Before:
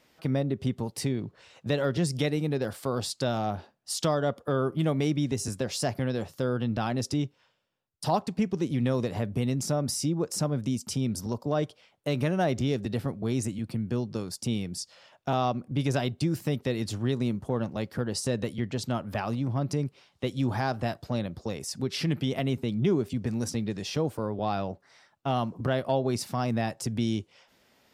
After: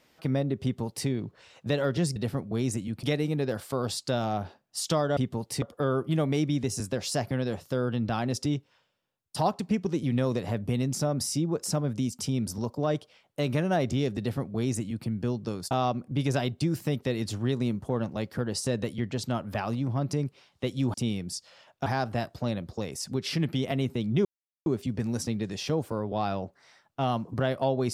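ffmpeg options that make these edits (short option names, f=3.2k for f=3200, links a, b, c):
-filter_complex "[0:a]asplit=9[a][b][c][d][e][f][g][h][i];[a]atrim=end=2.162[j];[b]atrim=start=12.868:end=13.742[k];[c]atrim=start=2.158:end=4.302[l];[d]atrim=start=0.628:end=1.082[m];[e]atrim=start=4.298:end=14.392[n];[f]atrim=start=15.308:end=20.542[o];[g]atrim=start=14.388:end=15.312[p];[h]atrim=start=20.538:end=22.93,asetpts=PTS-STARTPTS,afade=t=out:st=2.388:d=0.004:c=hsin,apad=pad_dur=0.41[q];[i]atrim=start=22.93,asetpts=PTS-STARTPTS,afade=t=in:d=0.004:c=hsin[r];[j][k]acrossfade=d=0.004:c1=hsin:c2=hsin[s];[s][l]acrossfade=d=0.004:c1=hsin:c2=hsin[t];[t][m]acrossfade=d=0.004:c1=hsin:c2=hsin[u];[u][n]acrossfade=d=0.004:c1=hsin:c2=hsin[v];[v][o]acrossfade=d=0.004:c1=hsin:c2=hsin[w];[w][p]acrossfade=d=0.004:c1=hsin:c2=hsin[x];[q][r]concat=n=2:v=0:a=1[y];[x][y]acrossfade=d=0.004:c1=hsin:c2=hsin"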